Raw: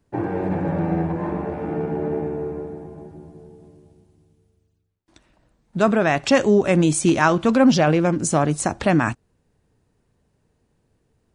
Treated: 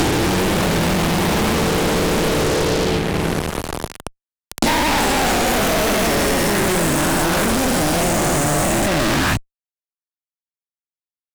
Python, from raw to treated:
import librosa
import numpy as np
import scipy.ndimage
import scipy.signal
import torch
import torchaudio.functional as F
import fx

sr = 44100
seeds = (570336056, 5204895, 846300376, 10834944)

p1 = fx.spec_dilate(x, sr, span_ms=480)
p2 = fx.level_steps(p1, sr, step_db=16)
p3 = p1 + (p2 * 10.0 ** (-0.5 / 20.0))
p4 = fx.echo_pitch(p3, sr, ms=241, semitones=2, count=3, db_per_echo=-3.0)
p5 = fx.fuzz(p4, sr, gain_db=31.0, gate_db=-32.0)
p6 = fx.low_shelf(p5, sr, hz=67.0, db=11.5)
p7 = fx.band_squash(p6, sr, depth_pct=100)
y = p7 * 10.0 ** (-4.5 / 20.0)